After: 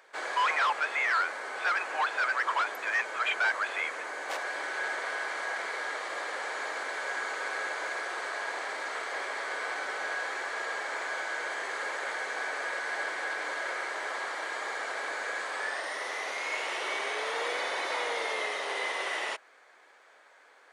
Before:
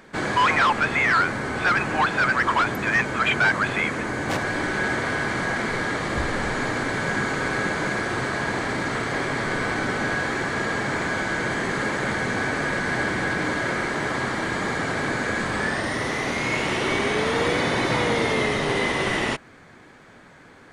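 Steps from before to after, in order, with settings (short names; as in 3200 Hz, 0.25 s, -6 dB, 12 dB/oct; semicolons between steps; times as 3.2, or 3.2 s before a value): HPF 500 Hz 24 dB/oct; gain -7.5 dB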